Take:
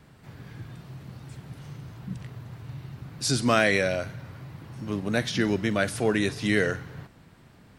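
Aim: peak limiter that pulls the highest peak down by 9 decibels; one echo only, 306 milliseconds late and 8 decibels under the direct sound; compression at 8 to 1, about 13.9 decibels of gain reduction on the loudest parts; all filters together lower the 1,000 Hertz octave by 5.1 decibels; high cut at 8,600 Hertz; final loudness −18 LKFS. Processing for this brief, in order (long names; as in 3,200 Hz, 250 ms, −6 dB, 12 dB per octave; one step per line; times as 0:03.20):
low-pass filter 8,600 Hz
parametric band 1,000 Hz −8 dB
downward compressor 8 to 1, threshold −34 dBFS
brickwall limiter −33.5 dBFS
single-tap delay 306 ms −8 dB
level +24.5 dB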